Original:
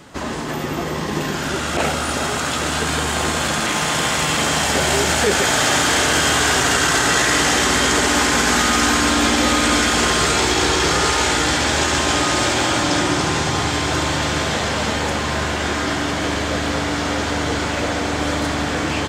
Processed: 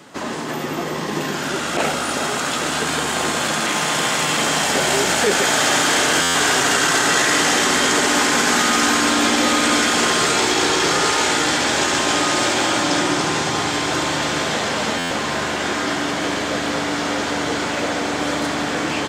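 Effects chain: HPF 170 Hz 12 dB/oct; stuck buffer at 6.22/14.98, samples 512, times 10

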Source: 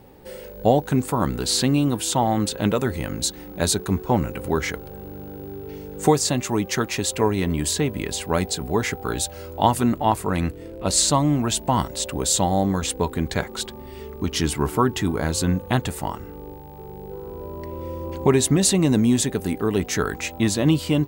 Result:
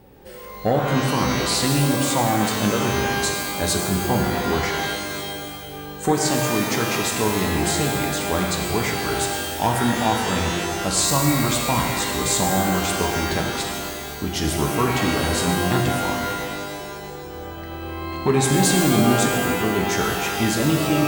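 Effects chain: sine folder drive 3 dB, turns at -3.5 dBFS; shimmer reverb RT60 1.7 s, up +12 st, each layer -2 dB, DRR 1.5 dB; gain -9 dB

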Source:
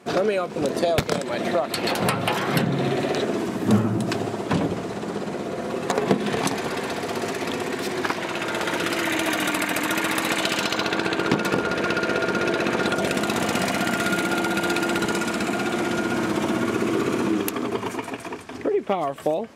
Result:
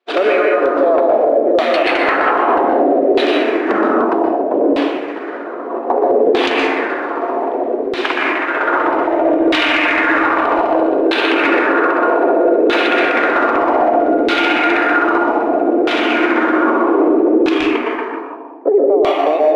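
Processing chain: expander -21 dBFS; steep high-pass 280 Hz 48 dB/oct; reverb RT60 1.2 s, pre-delay 0.121 s, DRR -2 dB; sample-rate reducer 13000 Hz, jitter 0%; LFO low-pass saw down 0.63 Hz 460–3700 Hz; limiter -12.5 dBFS, peak gain reduction 10.5 dB; gain +8 dB

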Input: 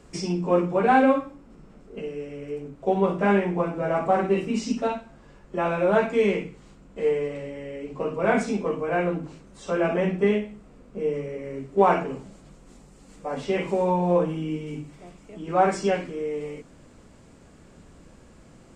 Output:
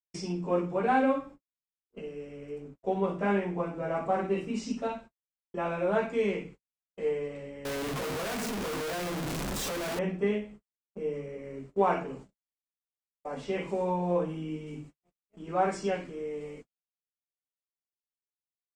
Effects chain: 7.65–9.99 infinite clipping; gate -39 dBFS, range -60 dB; gain -7 dB

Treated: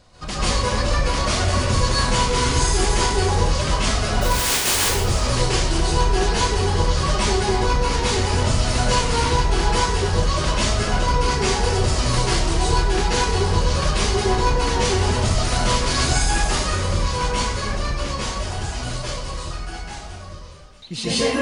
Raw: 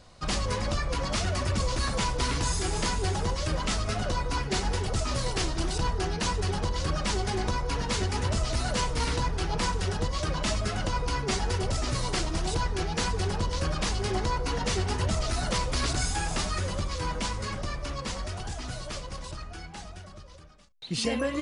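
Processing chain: 4.21–4.74 spectral contrast lowered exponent 0.13; reverb RT60 0.65 s, pre-delay 0.129 s, DRR -8.5 dB

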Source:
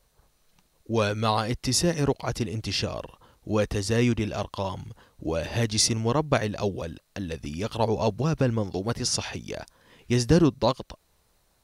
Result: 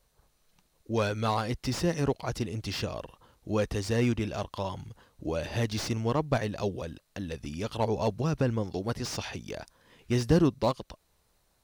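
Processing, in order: slew limiter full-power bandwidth 140 Hz; gain -3.5 dB

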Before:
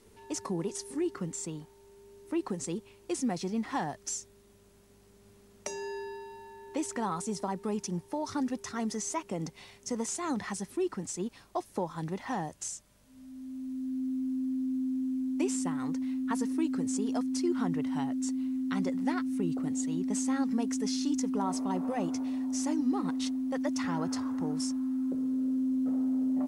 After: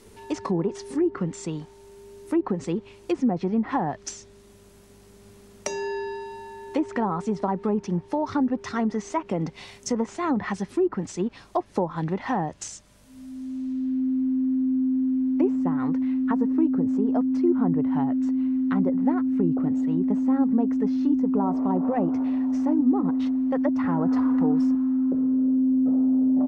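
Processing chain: treble ducked by the level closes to 830 Hz, closed at -27 dBFS; 24.05–24.75 comb 4.1 ms, depth 51%; gain +8.5 dB

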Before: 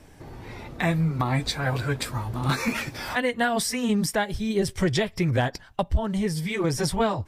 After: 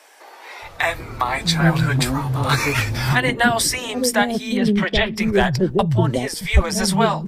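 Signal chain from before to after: 4.57–5.15 resonant high shelf 4800 Hz -14 dB, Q 1.5; three bands offset in time highs, lows, mids 0.62/0.78 s, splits 170/540 Hz; gain +8.5 dB

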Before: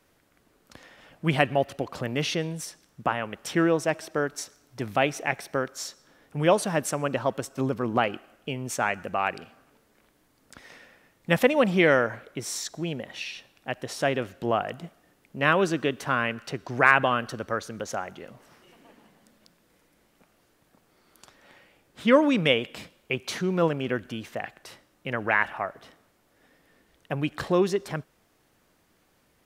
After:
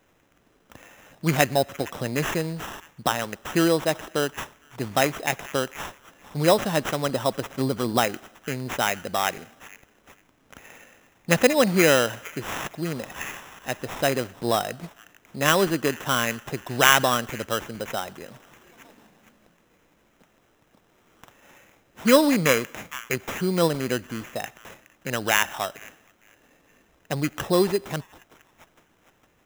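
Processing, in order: delay with a stepping band-pass 0.458 s, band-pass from 3800 Hz, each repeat 0.7 oct, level -9.5 dB; sample-rate reducer 4500 Hz, jitter 0%; gain +2 dB

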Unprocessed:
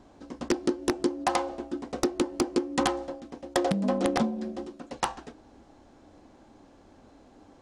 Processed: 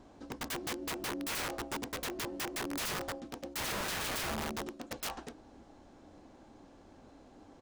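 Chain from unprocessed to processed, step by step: harmoniser -7 st -16 dB; wrapped overs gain 29.5 dB; gain -2 dB

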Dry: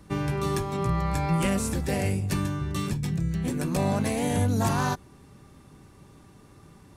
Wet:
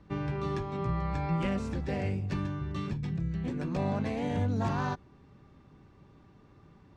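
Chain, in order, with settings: air absorption 180 m; gain -5 dB

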